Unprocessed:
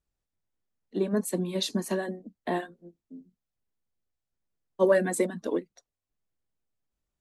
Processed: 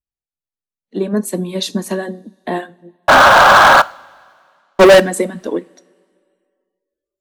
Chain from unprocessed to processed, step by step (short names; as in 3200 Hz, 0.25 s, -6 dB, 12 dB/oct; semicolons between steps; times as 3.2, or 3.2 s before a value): 3.08–3.82 painted sound noise 520–1700 Hz -28 dBFS; 3–5 sample leveller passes 5; two-slope reverb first 0.42 s, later 2.3 s, from -18 dB, DRR 18 dB; spectral noise reduction 21 dB; gain +8.5 dB